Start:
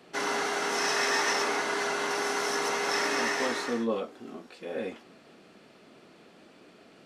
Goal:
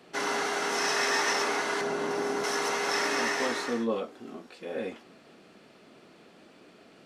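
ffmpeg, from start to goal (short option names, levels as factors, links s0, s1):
-filter_complex "[0:a]asettb=1/sr,asplit=3[s0][s1][s2];[s0]atrim=end=1.814[s3];[s1]atrim=start=1.81:end=2.44,asetpts=PTS-STARTPTS,afade=t=in:d=0.004:c=qsin,afade=t=out:st=0.626:d=0.004:c=qsin,tiltshelf=f=650:g=7.5[s4];[s2]atrim=start=2.436[s5];[s3][s4]acrossfade=d=0.004:c1=hsin:c2=qsin[s6];[s6][s5]acrossfade=d=0.004:c1=qsin:c2=hsin"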